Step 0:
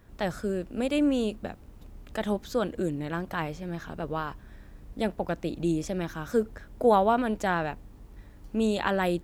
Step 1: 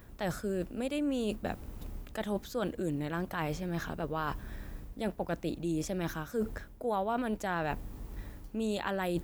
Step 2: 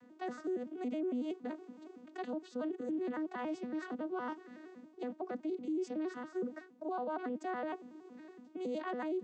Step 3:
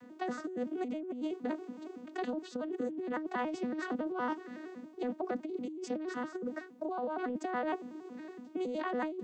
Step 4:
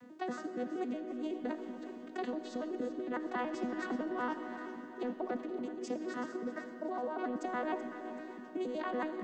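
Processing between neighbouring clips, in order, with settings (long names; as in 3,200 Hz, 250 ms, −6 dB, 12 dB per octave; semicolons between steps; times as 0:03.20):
high-shelf EQ 12,000 Hz +11 dB; reversed playback; downward compressor 5 to 1, threshold −36 dBFS, peak gain reduction 18 dB; reversed playback; level +5 dB
vocoder with an arpeggio as carrier major triad, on B3, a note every 93 ms; brickwall limiter −31.5 dBFS, peak gain reduction 10 dB; level +1 dB
compressor whose output falls as the input rises −39 dBFS, ratio −0.5; level +4.5 dB
feedback echo with a high-pass in the loop 380 ms, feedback 47%, level −12.5 dB; on a send at −8 dB: convolution reverb RT60 3.5 s, pre-delay 15 ms; on the sum: level −1.5 dB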